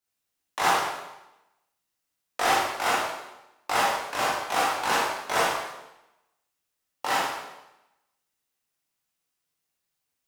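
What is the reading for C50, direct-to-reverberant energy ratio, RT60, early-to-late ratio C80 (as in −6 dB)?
−0.5 dB, −7.0 dB, 0.95 s, 3.5 dB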